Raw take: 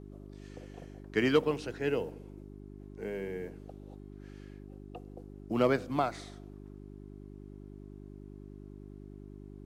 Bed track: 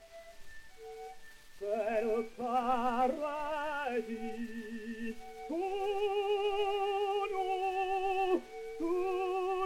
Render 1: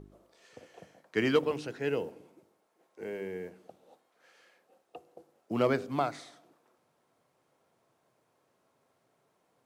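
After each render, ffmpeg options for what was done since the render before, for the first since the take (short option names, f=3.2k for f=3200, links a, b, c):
-af "bandreject=f=50:t=h:w=4,bandreject=f=100:t=h:w=4,bandreject=f=150:t=h:w=4,bandreject=f=200:t=h:w=4,bandreject=f=250:t=h:w=4,bandreject=f=300:t=h:w=4,bandreject=f=350:t=h:w=4,bandreject=f=400:t=h:w=4"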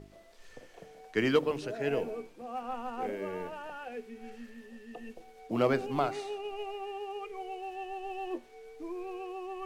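-filter_complex "[1:a]volume=-6.5dB[a];[0:a][a]amix=inputs=2:normalize=0"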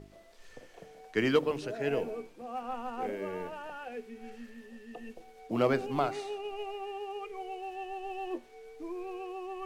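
-af anull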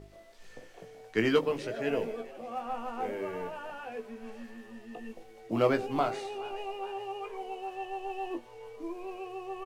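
-filter_complex "[0:a]asplit=2[a][b];[b]adelay=18,volume=-6.5dB[c];[a][c]amix=inputs=2:normalize=0,asplit=5[d][e][f][g][h];[e]adelay=421,afreqshift=110,volume=-19.5dB[i];[f]adelay=842,afreqshift=220,volume=-24.7dB[j];[g]adelay=1263,afreqshift=330,volume=-29.9dB[k];[h]adelay=1684,afreqshift=440,volume=-35.1dB[l];[d][i][j][k][l]amix=inputs=5:normalize=0"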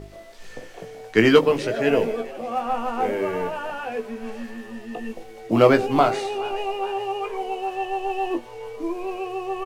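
-af "volume=11dB,alimiter=limit=-2dB:level=0:latency=1"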